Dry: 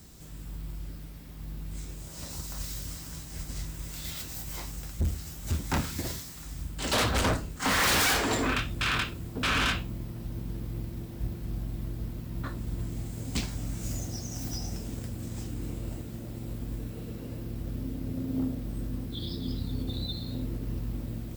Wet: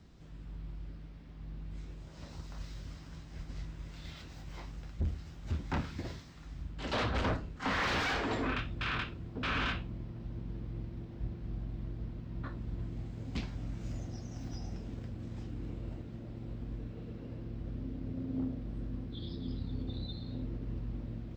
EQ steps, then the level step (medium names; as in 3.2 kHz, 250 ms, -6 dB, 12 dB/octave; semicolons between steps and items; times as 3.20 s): distance through air 200 m; -5.0 dB